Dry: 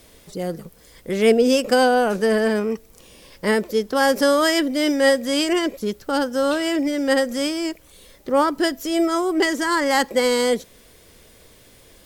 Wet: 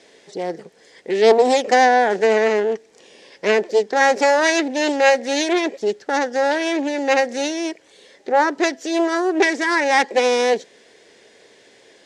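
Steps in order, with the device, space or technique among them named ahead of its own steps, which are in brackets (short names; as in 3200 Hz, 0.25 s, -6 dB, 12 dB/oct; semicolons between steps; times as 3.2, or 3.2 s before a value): full-range speaker at full volume (Doppler distortion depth 0.45 ms; speaker cabinet 290–7300 Hz, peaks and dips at 410 Hz +6 dB, 790 Hz +4 dB, 1200 Hz -7 dB, 1800 Hz +7 dB); gain +1 dB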